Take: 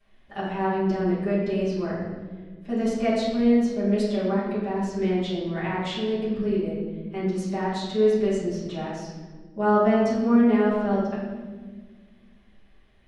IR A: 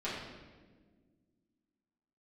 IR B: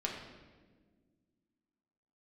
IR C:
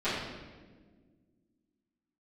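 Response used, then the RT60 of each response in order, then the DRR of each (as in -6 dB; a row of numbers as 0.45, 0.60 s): C; 1.5, 1.5, 1.5 s; -10.5, -2.0, -17.0 dB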